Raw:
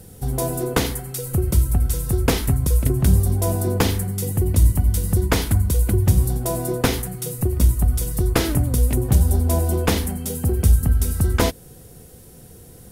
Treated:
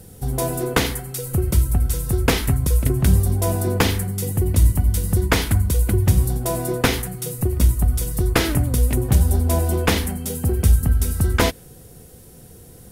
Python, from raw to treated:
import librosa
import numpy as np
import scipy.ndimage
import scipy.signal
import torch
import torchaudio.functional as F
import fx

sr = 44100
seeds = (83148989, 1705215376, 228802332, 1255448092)

y = fx.dynamic_eq(x, sr, hz=2100.0, q=0.72, threshold_db=-38.0, ratio=4.0, max_db=5)